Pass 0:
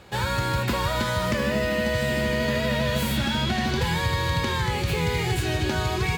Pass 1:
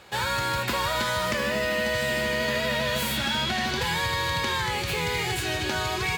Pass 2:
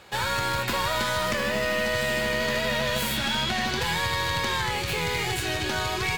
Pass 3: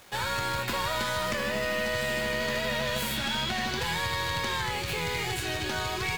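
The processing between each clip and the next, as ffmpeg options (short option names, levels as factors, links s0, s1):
-af "lowshelf=f=410:g=-11,volume=1.26"
-af "aeval=exprs='0.133*(abs(mod(val(0)/0.133+3,4)-2)-1)':c=same,aeval=exprs='0.133*(cos(1*acos(clip(val(0)/0.133,-1,1)))-cos(1*PI/2))+0.0266*(cos(2*acos(clip(val(0)/0.133,-1,1)))-cos(2*PI/2))':c=same"
-af "acrusher=bits=7:mix=0:aa=0.000001,volume=0.668"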